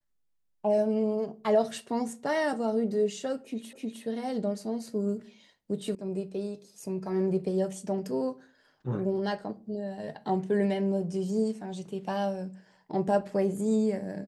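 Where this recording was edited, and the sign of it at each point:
3.73 repeat of the last 0.31 s
5.95 sound cut off

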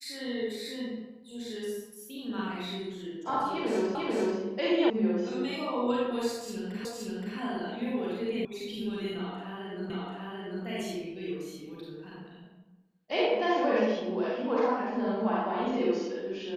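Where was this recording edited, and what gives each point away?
3.95 repeat of the last 0.44 s
4.9 sound cut off
6.85 repeat of the last 0.52 s
8.45 sound cut off
9.9 repeat of the last 0.74 s

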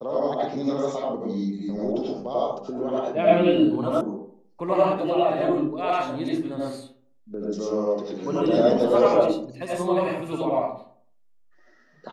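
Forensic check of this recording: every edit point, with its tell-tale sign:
4.01 sound cut off

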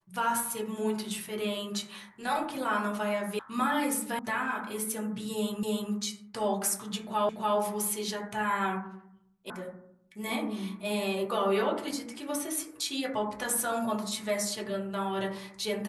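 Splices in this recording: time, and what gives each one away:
3.39 sound cut off
4.19 sound cut off
5.63 repeat of the last 0.3 s
7.29 repeat of the last 0.29 s
9.5 sound cut off

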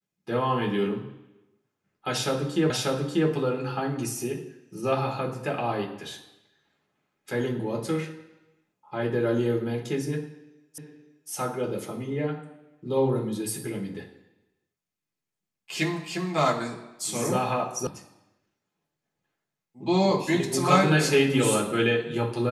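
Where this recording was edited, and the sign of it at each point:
2.7 repeat of the last 0.59 s
10.78 repeat of the last 0.52 s
17.87 sound cut off

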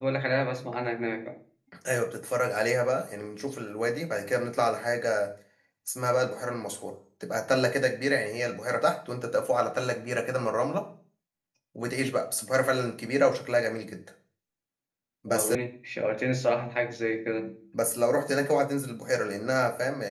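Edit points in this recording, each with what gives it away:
15.55 sound cut off

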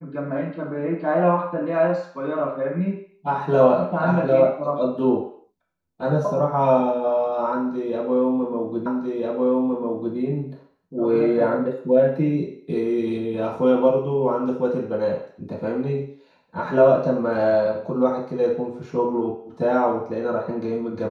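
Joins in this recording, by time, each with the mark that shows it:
8.86 repeat of the last 1.3 s

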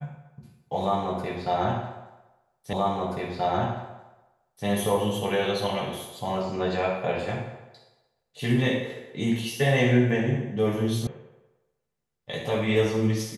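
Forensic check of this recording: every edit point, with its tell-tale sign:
2.73 repeat of the last 1.93 s
11.07 sound cut off

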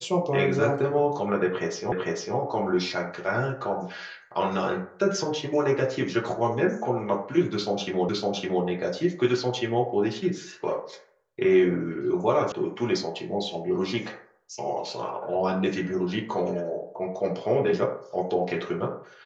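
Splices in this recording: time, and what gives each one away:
1.92 repeat of the last 0.45 s
8.09 repeat of the last 0.56 s
12.52 sound cut off

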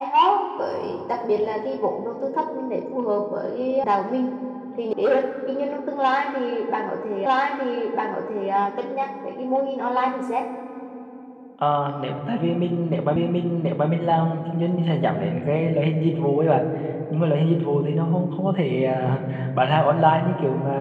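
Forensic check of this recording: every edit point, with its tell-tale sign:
3.84 sound cut off
4.93 sound cut off
7.26 repeat of the last 1.25 s
13.16 repeat of the last 0.73 s

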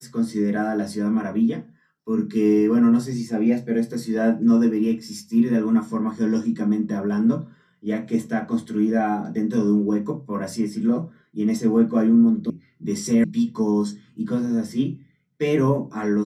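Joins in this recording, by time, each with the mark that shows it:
12.5 sound cut off
13.24 sound cut off

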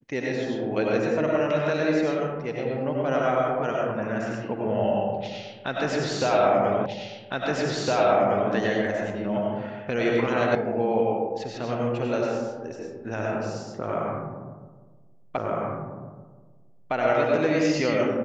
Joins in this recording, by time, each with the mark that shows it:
6.86 repeat of the last 1.66 s
10.55 sound cut off
15.37 repeat of the last 1.56 s

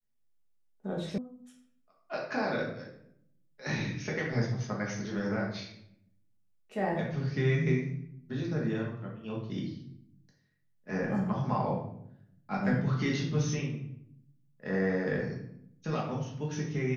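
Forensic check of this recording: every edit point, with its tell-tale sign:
1.18 sound cut off

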